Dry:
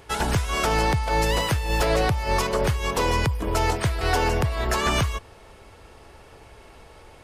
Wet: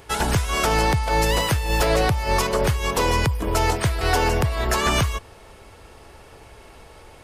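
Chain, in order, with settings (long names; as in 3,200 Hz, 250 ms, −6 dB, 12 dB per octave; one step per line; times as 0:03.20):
high-shelf EQ 8,200 Hz +4.5 dB
level +2 dB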